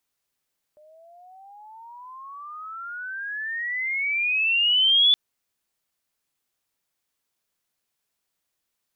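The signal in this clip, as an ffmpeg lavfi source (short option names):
-f lavfi -i "aevalsrc='pow(10,(-13.5+36*(t/4.37-1))/20)*sin(2*PI*598*4.37/(30.5*log(2)/12)*(exp(30.5*log(2)/12*t/4.37)-1))':d=4.37:s=44100"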